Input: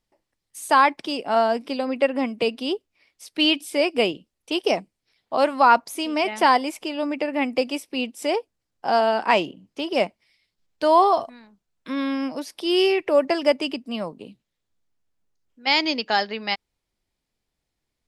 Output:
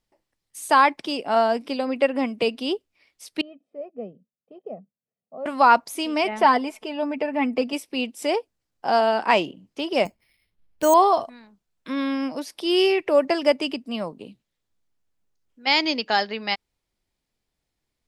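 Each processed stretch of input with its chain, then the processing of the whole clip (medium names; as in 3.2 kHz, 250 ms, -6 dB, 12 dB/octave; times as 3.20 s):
3.41–5.46 s: ladder band-pass 250 Hz, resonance 40% + comb 1.6 ms, depth 80%
6.28–7.73 s: treble shelf 2.6 kHz -10.5 dB + comb 4.6 ms, depth 62%
10.05–10.94 s: bass shelf 140 Hz +11 dB + careless resampling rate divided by 6×, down filtered, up hold
whole clip: none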